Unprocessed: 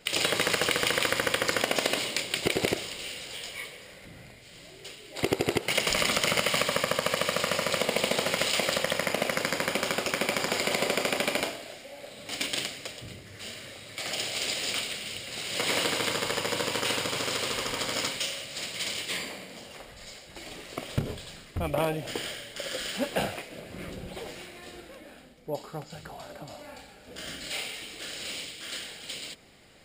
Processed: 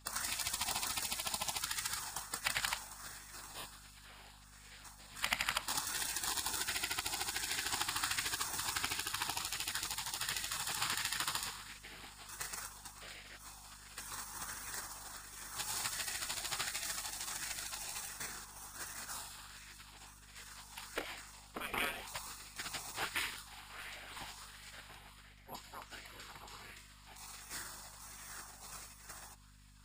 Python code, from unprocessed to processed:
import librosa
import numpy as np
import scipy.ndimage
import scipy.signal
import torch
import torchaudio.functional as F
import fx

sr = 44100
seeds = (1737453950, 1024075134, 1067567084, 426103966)

y = fx.spec_gate(x, sr, threshold_db=-15, keep='weak')
y = fx.add_hum(y, sr, base_hz=50, snr_db=18)
y = fx.bell_lfo(y, sr, hz=1.4, low_hz=820.0, high_hz=2100.0, db=7)
y = F.gain(torch.from_numpy(y), -2.5).numpy()